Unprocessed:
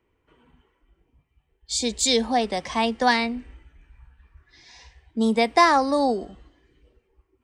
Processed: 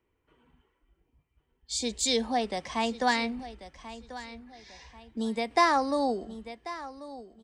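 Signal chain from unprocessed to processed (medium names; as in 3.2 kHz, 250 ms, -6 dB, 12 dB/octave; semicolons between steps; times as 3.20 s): feedback delay 1089 ms, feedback 24%, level -15.5 dB; 3.39–5.51 s: three bands compressed up and down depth 40%; trim -6 dB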